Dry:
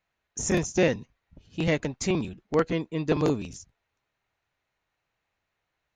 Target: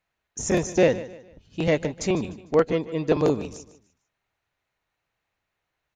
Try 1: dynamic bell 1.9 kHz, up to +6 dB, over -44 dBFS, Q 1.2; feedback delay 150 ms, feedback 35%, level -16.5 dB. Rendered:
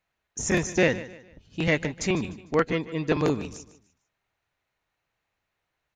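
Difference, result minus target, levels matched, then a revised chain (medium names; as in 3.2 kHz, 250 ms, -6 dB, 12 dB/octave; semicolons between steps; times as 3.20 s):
2 kHz band +7.0 dB
dynamic bell 560 Hz, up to +6 dB, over -44 dBFS, Q 1.2; feedback delay 150 ms, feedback 35%, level -16.5 dB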